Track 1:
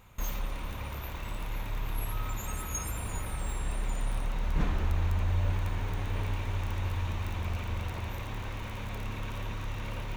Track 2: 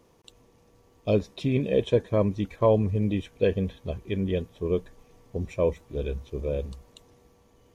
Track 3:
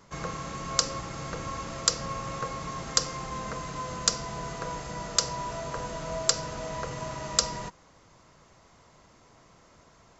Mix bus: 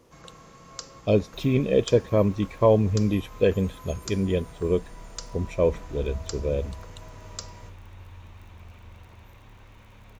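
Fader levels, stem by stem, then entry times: −13.0, +2.5, −13.5 decibels; 1.15, 0.00, 0.00 seconds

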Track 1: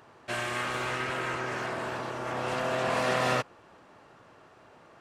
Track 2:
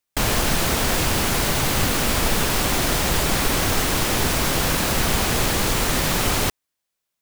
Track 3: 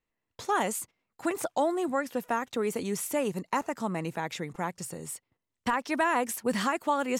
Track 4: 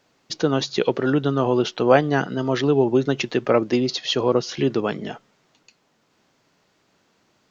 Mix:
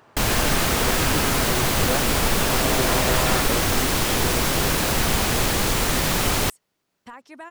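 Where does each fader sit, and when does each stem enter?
+1.5, −0.5, −13.5, −13.0 decibels; 0.00, 0.00, 1.40, 0.00 seconds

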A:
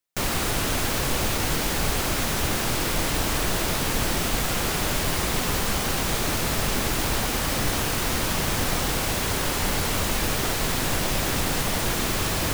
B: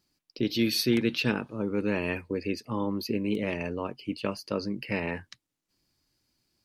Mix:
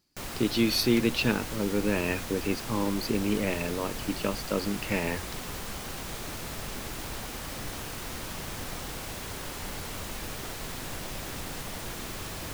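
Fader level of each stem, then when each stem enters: −12.5, +1.0 decibels; 0.00, 0.00 seconds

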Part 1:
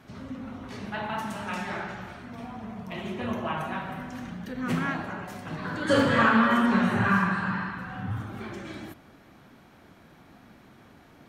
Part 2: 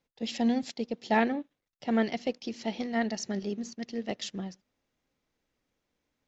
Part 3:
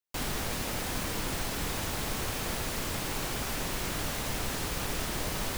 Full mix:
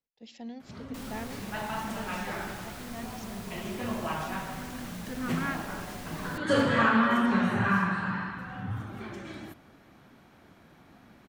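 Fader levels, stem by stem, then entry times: −2.5, −15.0, −11.5 decibels; 0.60, 0.00, 0.80 seconds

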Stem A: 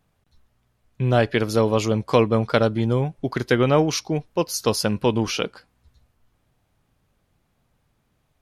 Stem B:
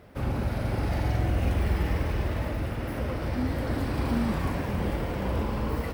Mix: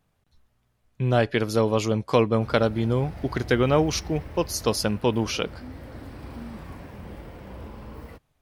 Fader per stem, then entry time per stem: −2.5, −11.5 decibels; 0.00, 2.25 seconds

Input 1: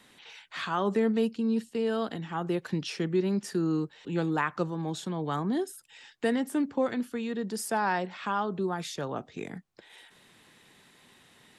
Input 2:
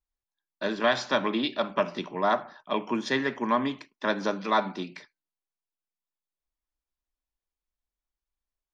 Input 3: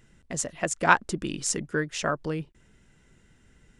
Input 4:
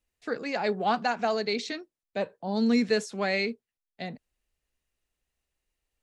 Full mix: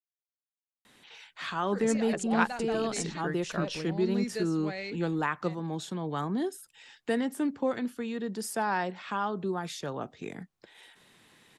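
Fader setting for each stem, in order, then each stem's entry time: −1.5 dB, muted, −8.5 dB, −10.5 dB; 0.85 s, muted, 1.50 s, 1.45 s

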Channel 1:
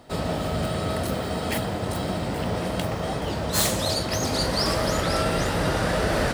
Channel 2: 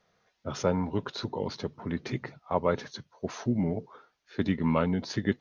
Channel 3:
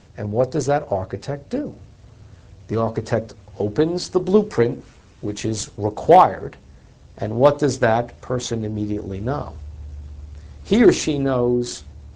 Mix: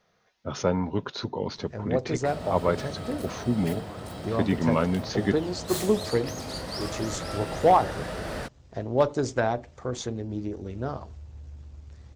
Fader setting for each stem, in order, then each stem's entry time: −10.5, +2.0, −8.0 decibels; 2.15, 0.00, 1.55 seconds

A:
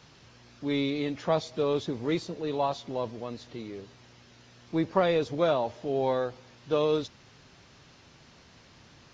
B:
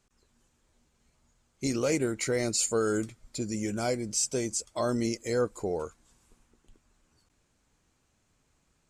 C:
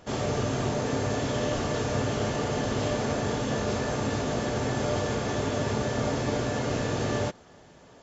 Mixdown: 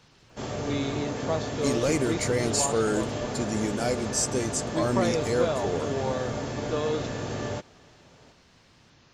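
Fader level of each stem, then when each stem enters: −3.0, +1.5, −4.0 decibels; 0.00, 0.00, 0.30 seconds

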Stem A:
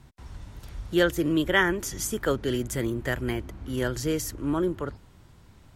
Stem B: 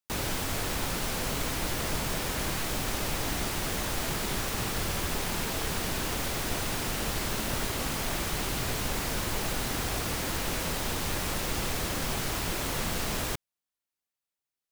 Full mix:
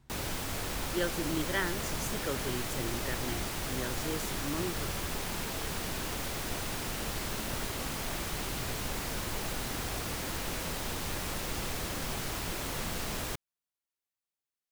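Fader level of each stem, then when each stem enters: −10.5, −4.5 decibels; 0.00, 0.00 seconds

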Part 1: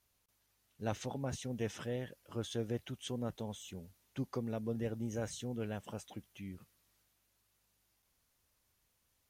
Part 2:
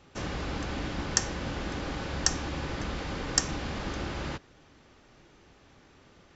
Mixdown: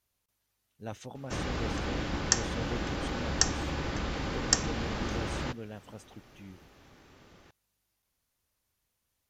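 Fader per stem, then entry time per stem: −3.0, +0.5 decibels; 0.00, 1.15 seconds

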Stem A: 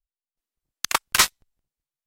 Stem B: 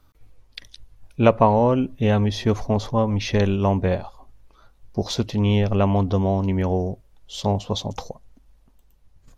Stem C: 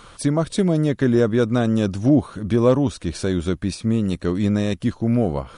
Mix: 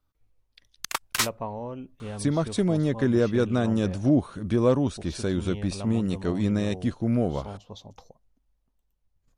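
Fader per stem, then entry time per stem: −7.5, −17.5, −5.0 decibels; 0.00, 0.00, 2.00 seconds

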